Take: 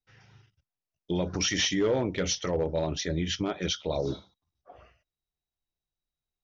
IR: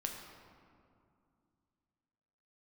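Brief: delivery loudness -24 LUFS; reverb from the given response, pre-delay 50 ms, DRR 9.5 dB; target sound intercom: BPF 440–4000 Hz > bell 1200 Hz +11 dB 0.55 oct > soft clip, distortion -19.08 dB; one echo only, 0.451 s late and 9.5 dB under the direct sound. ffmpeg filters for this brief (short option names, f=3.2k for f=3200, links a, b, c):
-filter_complex "[0:a]aecho=1:1:451:0.335,asplit=2[a][b];[1:a]atrim=start_sample=2205,adelay=50[c];[b][c]afir=irnorm=-1:irlink=0,volume=-10dB[d];[a][d]amix=inputs=2:normalize=0,highpass=440,lowpass=4k,equalizer=f=1.2k:t=o:w=0.55:g=11,asoftclip=threshold=-21dB,volume=8dB"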